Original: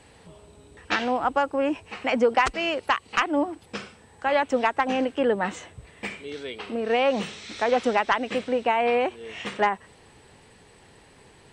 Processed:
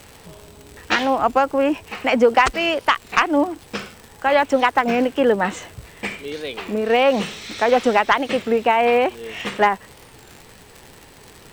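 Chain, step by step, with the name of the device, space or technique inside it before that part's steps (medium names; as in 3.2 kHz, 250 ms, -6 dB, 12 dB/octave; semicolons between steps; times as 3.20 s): warped LP (warped record 33 1/3 rpm, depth 160 cents; crackle 140 per s -36 dBFS; pink noise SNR 32 dB); trim +6 dB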